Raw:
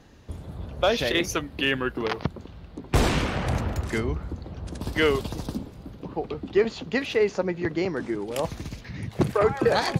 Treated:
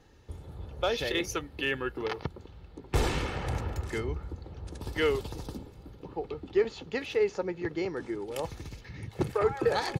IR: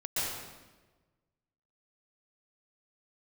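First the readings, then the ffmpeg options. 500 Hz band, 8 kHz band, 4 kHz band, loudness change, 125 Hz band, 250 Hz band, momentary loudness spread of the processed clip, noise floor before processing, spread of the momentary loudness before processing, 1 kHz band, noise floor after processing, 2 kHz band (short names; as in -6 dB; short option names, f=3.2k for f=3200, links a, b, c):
-5.0 dB, -6.0 dB, -6.5 dB, -5.5 dB, -6.5 dB, -8.0 dB, 16 LU, -45 dBFS, 15 LU, -6.0 dB, -52 dBFS, -6.5 dB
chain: -af "aecho=1:1:2.3:0.41,volume=-7dB"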